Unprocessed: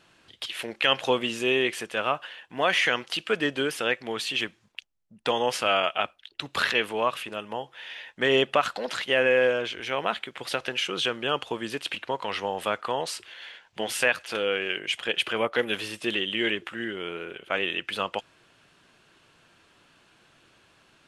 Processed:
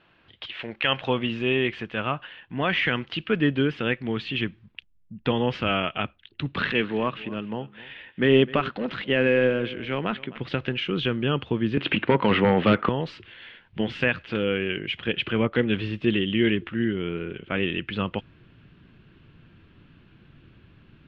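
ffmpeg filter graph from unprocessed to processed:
-filter_complex "[0:a]asettb=1/sr,asplit=3[a][b][c];[a]atrim=end=6.524[d];[b]atrim=start=6.52:end=10.39,asetpts=PTS-STARTPTS,afade=t=in:d=0.004:c=qsin,afade=t=out:st=3.866:d=0.004:c=qsin,highpass=150,adynamicsmooth=sensitivity=7:basefreq=4.6k,aecho=1:1:258:0.112,atrim=end_sample=170667[e];[c]atrim=start=10.386[f];[d][e]acrossfade=d=0.004:c1=hsin:c2=qsin[g];[g][f]acrossfade=d=0.004:c1=qsin:c2=hsin,asettb=1/sr,asplit=3[h][i][j];[h]atrim=end=11.774[k];[i]atrim=start=11.77:end=12.89,asetpts=PTS-STARTPTS,afade=t=in:d=0.004:c=qsin,afade=t=out:st=1.116:d=0.004:c=qsin,highshelf=f=3k:g=-6.5,aeval=exprs='0.237*sin(PI/2*2.82*val(0)/0.237)':c=same,highpass=180,lowpass=3.8k[l];[j]atrim=start=12.886[m];[k][l]acrossfade=d=0.004:c1=hsin:c2=qsin[n];[n][m]acrossfade=d=0.004:c1=qsin:c2=hsin,asubboost=boost=9.5:cutoff=220,lowpass=f=3.3k:w=0.5412,lowpass=f=3.3k:w=1.3066"

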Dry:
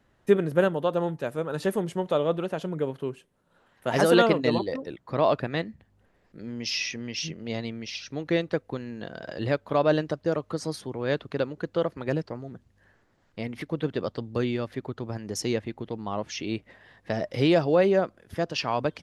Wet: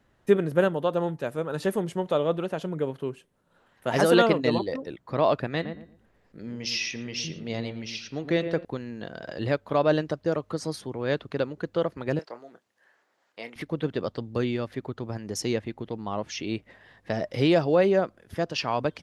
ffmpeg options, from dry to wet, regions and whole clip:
-filter_complex "[0:a]asettb=1/sr,asplit=3[a][b][c];[a]atrim=end=5.534[d];[b]atrim=start=5.53:end=8.65,asetpts=PTS-STARTPTS,afade=t=in:d=0.004:c=qsin,afade=t=out:st=3.116:d=0.004:c=qsin,bandreject=f=178.4:t=h:w=4,bandreject=f=356.8:t=h:w=4,bandreject=f=535.2:t=h:w=4,bandreject=f=713.6:t=h:w=4,bandreject=f=892:t=h:w=4,bandreject=f=1.0704k:t=h:w=4,bandreject=f=1.2488k:t=h:w=4,bandreject=f=1.4272k:t=h:w=4,bandreject=f=1.6056k:t=h:w=4,bandreject=f=1.784k:t=h:w=4,bandreject=f=1.9624k:t=h:w=4,bandreject=f=2.1408k:t=h:w=4,bandreject=f=2.3192k:t=h:w=4,bandreject=f=2.4976k:t=h:w=4,bandreject=f=2.676k:t=h:w=4,bandreject=f=2.8544k:t=h:w=4,bandreject=f=3.0328k:t=h:w=4,bandreject=f=3.2112k:t=h:w=4,bandreject=f=3.3896k:t=h:w=4,bandreject=f=3.568k:t=h:w=4,bandreject=f=3.7464k:t=h:w=4,bandreject=f=3.9248k:t=h:w=4,bandreject=f=4.1032k:t=h:w=4,bandreject=f=4.2816k:t=h:w=4,bandreject=f=4.46k:t=h:w=4,bandreject=f=4.6384k:t=h:w=4,asplit=2[e][f];[f]adelay=115,lowpass=f=1.1k:p=1,volume=-7dB,asplit=2[g][h];[h]adelay=115,lowpass=f=1.1k:p=1,volume=0.27,asplit=2[i][j];[j]adelay=115,lowpass=f=1.1k:p=1,volume=0.27[k];[e][g][i][k]amix=inputs=4:normalize=0,atrim=end_sample=137592[l];[c]atrim=start=8.646[m];[d][l]acrossfade=d=0.004:c1=hsin:c2=qsin[n];[n][m]acrossfade=d=0.004:c1=qsin:c2=hsin,asettb=1/sr,asplit=3[o][p][q];[o]atrim=end=12.194[r];[p]atrim=start=12.19:end=13.56,asetpts=PTS-STARTPTS,afade=t=in:d=0.004:c=qsin,afade=t=out:st=1.366:d=0.004:c=qsin,highpass=530,asplit=2[s][t];[t]adelay=26,volume=-11.5dB[u];[s][u]amix=inputs=2:normalize=0,atrim=end_sample=60417[v];[q]atrim=start=13.556[w];[r][v]acrossfade=d=0.004:c1=hsin:c2=qsin[x];[x][w]acrossfade=d=0.004:c1=qsin:c2=hsin"

